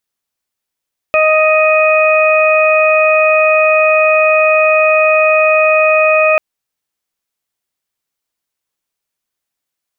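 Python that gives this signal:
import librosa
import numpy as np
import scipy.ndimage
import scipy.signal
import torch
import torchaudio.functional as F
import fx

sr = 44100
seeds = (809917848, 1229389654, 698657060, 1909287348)

y = fx.additive_steady(sr, length_s=5.24, hz=624.0, level_db=-9.5, upper_db=(-6.0, -16, -2.5))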